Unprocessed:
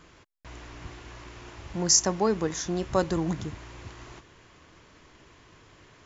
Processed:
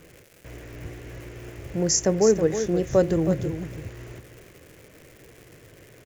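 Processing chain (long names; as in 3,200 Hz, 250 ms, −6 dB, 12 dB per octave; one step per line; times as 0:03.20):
single-tap delay 321 ms −9.5 dB
surface crackle 390 per second −38 dBFS
octave-band graphic EQ 125/500/1,000/2,000/4,000 Hz +7/+11/−11/+5/−7 dB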